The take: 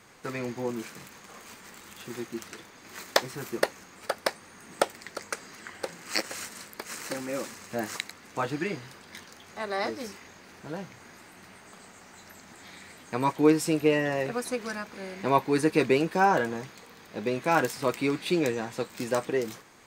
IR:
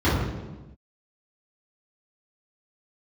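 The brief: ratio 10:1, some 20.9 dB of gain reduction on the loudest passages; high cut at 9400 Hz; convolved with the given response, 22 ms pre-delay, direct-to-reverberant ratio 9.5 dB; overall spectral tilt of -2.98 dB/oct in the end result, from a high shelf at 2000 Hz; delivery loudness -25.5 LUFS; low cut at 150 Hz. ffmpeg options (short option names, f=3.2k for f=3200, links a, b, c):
-filter_complex "[0:a]highpass=150,lowpass=9.4k,highshelf=f=2k:g=9,acompressor=threshold=-34dB:ratio=10,asplit=2[a][b];[1:a]atrim=start_sample=2205,adelay=22[c];[b][c]afir=irnorm=-1:irlink=0,volume=-27.5dB[d];[a][d]amix=inputs=2:normalize=0,volume=13dB"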